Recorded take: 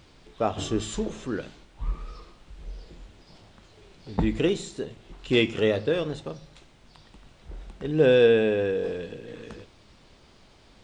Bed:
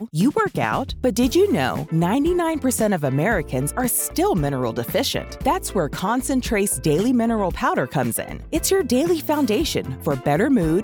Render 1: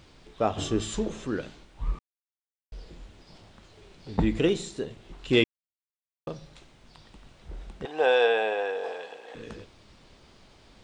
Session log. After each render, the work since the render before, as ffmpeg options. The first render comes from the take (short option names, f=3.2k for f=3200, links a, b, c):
-filter_complex "[0:a]asettb=1/sr,asplit=3[a][b][c];[a]atrim=end=7.854[d];[b]atrim=start=7.85:end=9.35,asetpts=PTS-STARTPTS,afade=t=in:d=0.004:c=qsin,afade=t=out:st=1.496:d=0.004:c=qsin,highpass=f=790:t=q:w=4.8[e];[c]atrim=start=9.346[f];[d][e]acrossfade=d=0.004:c1=hsin:c2=qsin[g];[g][f]acrossfade=d=0.004:c1=qsin:c2=hsin,asplit=5[h][i][j][k][l];[h]atrim=end=1.99,asetpts=PTS-STARTPTS,afade=t=out:st=1.986:d=0.004:c=hsin[m];[i]atrim=start=1.99:end=2.72,asetpts=PTS-STARTPTS,volume=0[n];[j]atrim=start=2.72:end=5.44,asetpts=PTS-STARTPTS,afade=t=in:d=0.004:c=hsin,afade=t=out:st=2.716:d=0.004:c=hsin[o];[k]atrim=start=5.44:end=6.27,asetpts=PTS-STARTPTS,volume=0[p];[l]atrim=start=6.27,asetpts=PTS-STARTPTS,afade=t=in:d=0.004:c=hsin[q];[m][n][o][p][q]concat=n=5:v=0:a=1"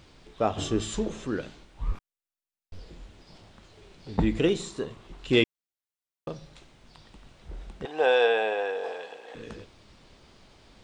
-filter_complex "[0:a]asettb=1/sr,asplit=3[a][b][c];[a]atrim=end=1.914[d];[b]atrim=start=1.91:end=2.79,asetpts=PTS-STARTPTS,afade=t=in:d=0.004:c=qsin,afade=t=out:st=0.876:d=0.004:c=qsin,aeval=exprs='abs(val(0))':c=same[e];[c]atrim=start=2.786[f];[d][e]acrossfade=d=0.004:c1=hsin:c2=qsin[g];[g][f]acrossfade=d=0.004:c1=qsin:c2=hsin,asettb=1/sr,asplit=3[h][i][j];[h]atrim=end=4.604[k];[i]atrim=start=4.6:end=5.07,asetpts=PTS-STARTPTS,afade=t=in:d=0.004:c=qsin,afade=t=out:st=0.466:d=0.004:c=qsin,equalizer=f=1.1k:t=o:w=0.45:g=11.5[l];[j]atrim=start=5.066[m];[k][l]acrossfade=d=0.004:c1=hsin:c2=qsin[n];[n][m]acrossfade=d=0.004:c1=qsin:c2=hsin"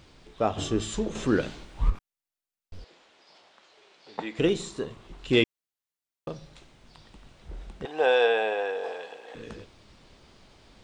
-filter_complex "[0:a]asettb=1/sr,asplit=3[a][b][c];[a]atrim=end=1.154[d];[b]atrim=start=1.15:end=1.9,asetpts=PTS-STARTPTS,afade=t=in:d=0.004:c=qsin,afade=t=out:st=0.746:d=0.004:c=qsin,acontrast=84[e];[c]atrim=start=1.896[f];[d][e]acrossfade=d=0.004:c1=hsin:c2=qsin[g];[g][f]acrossfade=d=0.004:c1=qsin:c2=hsin,asettb=1/sr,asplit=3[h][i][j];[h]atrim=end=2.844[k];[i]atrim=start=2.84:end=4.39,asetpts=PTS-STARTPTS,afade=t=in:d=0.004:c=qsin,afade=t=out:st=1.546:d=0.004:c=qsin,highpass=570,lowpass=6.5k[l];[j]atrim=start=4.386[m];[k][l]acrossfade=d=0.004:c1=hsin:c2=qsin[n];[n][m]acrossfade=d=0.004:c1=qsin:c2=hsin"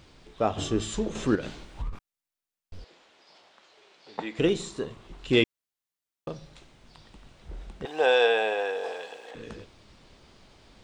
-filter_complex "[0:a]asettb=1/sr,asplit=3[a][b][c];[a]atrim=end=1.354[d];[b]atrim=start=1.35:end=1.93,asetpts=PTS-STARTPTS,afade=t=in:d=0.004:c=qsin,afade=t=out:st=0.576:d=0.004:c=qsin,acompressor=threshold=-28dB:ratio=10:attack=3.2:release=140:knee=1:detection=peak[e];[c]atrim=start=1.926[f];[d][e]acrossfade=d=0.004:c1=hsin:c2=qsin[g];[g][f]acrossfade=d=0.004:c1=qsin:c2=hsin,asettb=1/sr,asplit=3[h][i][j];[h]atrim=end=7.864[k];[i]atrim=start=7.86:end=9.31,asetpts=PTS-STARTPTS,afade=t=in:d=0.004:c=qsin,afade=t=out:st=1.446:d=0.004:c=qsin,highshelf=f=4.3k:g=8[l];[j]atrim=start=9.306[m];[k][l]acrossfade=d=0.004:c1=hsin:c2=qsin[n];[n][m]acrossfade=d=0.004:c1=qsin:c2=hsin"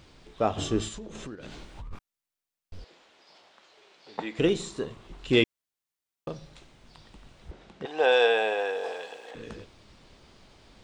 -filter_complex "[0:a]asettb=1/sr,asplit=3[a][b][c];[a]atrim=end=0.884[d];[b]atrim=start=0.88:end=1.91,asetpts=PTS-STARTPTS,afade=t=in:d=0.004:c=qsin,afade=t=out:st=1.026:d=0.004:c=qsin,acompressor=threshold=-37dB:ratio=8:attack=3.2:release=140:knee=1:detection=peak[e];[c]atrim=start=1.906[f];[d][e]acrossfade=d=0.004:c1=hsin:c2=qsin[g];[g][f]acrossfade=d=0.004:c1=qsin:c2=hsin,asettb=1/sr,asplit=3[h][i][j];[h]atrim=end=7.514[k];[i]atrim=start=7.51:end=8.12,asetpts=PTS-STARTPTS,afade=t=in:d=0.004:c=qsin,afade=t=out:st=0.606:d=0.004:c=qsin,highpass=140,lowpass=6.3k[l];[j]atrim=start=8.116[m];[k][l]acrossfade=d=0.004:c1=hsin:c2=qsin[n];[n][m]acrossfade=d=0.004:c1=qsin:c2=hsin"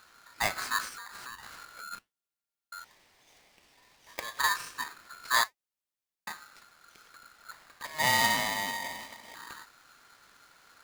-af "flanger=delay=2:depth=8.8:regen=-79:speed=1.8:shape=triangular,aeval=exprs='val(0)*sgn(sin(2*PI*1400*n/s))':c=same"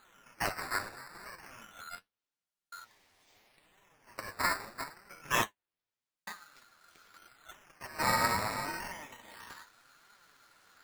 -af "acrusher=samples=8:mix=1:aa=0.000001:lfo=1:lforange=12.8:lforate=0.27,flanger=delay=4.7:depth=7.3:regen=41:speed=0.79:shape=triangular"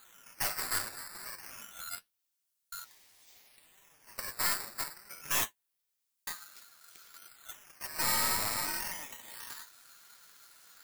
-af "aeval=exprs='(tanh(50.1*val(0)+0.65)-tanh(0.65))/50.1':c=same,crystalizer=i=4:c=0"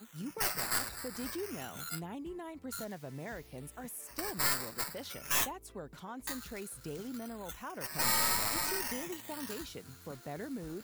-filter_complex "[1:a]volume=-23.5dB[a];[0:a][a]amix=inputs=2:normalize=0"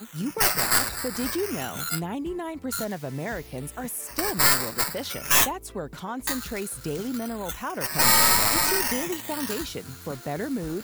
-af "volume=11.5dB"